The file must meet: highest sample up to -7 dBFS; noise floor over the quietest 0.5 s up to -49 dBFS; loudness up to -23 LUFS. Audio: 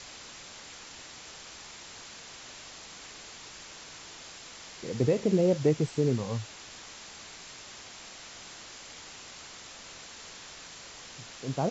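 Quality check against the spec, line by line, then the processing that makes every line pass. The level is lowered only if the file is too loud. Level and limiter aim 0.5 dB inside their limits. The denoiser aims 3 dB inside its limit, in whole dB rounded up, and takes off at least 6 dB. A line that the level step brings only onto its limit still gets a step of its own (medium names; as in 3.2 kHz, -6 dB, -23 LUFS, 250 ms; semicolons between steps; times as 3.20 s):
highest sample -13.5 dBFS: pass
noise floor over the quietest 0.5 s -47 dBFS: fail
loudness -35.0 LUFS: pass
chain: noise reduction 6 dB, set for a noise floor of -47 dBFS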